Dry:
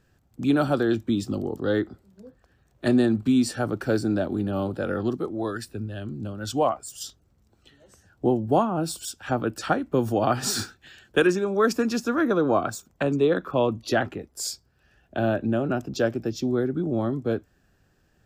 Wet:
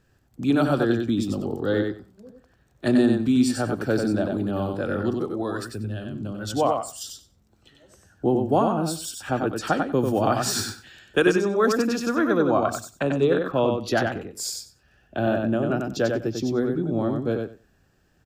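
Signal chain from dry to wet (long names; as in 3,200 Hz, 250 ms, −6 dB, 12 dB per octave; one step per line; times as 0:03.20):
repeating echo 94 ms, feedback 16%, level −4.5 dB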